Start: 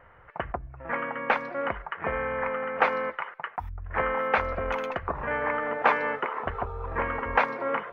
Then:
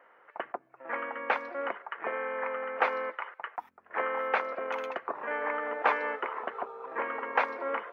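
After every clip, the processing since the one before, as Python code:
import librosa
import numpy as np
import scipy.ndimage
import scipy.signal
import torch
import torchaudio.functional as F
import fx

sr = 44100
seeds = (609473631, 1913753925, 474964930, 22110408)

y = scipy.signal.sosfilt(scipy.signal.butter(4, 280.0, 'highpass', fs=sr, output='sos'), x)
y = y * librosa.db_to_amplitude(-4.0)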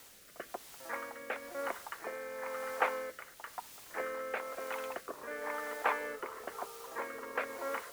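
y = fx.quant_dither(x, sr, seeds[0], bits=8, dither='triangular')
y = fx.rotary(y, sr, hz=1.0)
y = y * librosa.db_to_amplitude(-3.5)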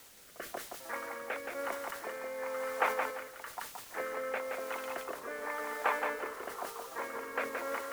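y = fx.echo_feedback(x, sr, ms=172, feedback_pct=27, wet_db=-5)
y = fx.sustainer(y, sr, db_per_s=100.0)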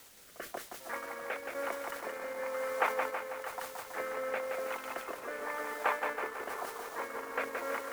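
y = fx.echo_wet_lowpass(x, sr, ms=323, feedback_pct=65, hz=3900.0, wet_db=-10.0)
y = fx.transient(y, sr, attack_db=0, sustain_db=-5)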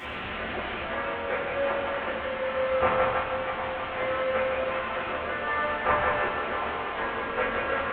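y = fx.delta_mod(x, sr, bps=16000, step_db=-35.5)
y = fx.rev_fdn(y, sr, rt60_s=1.1, lf_ratio=1.35, hf_ratio=0.95, size_ms=79.0, drr_db=-8.0)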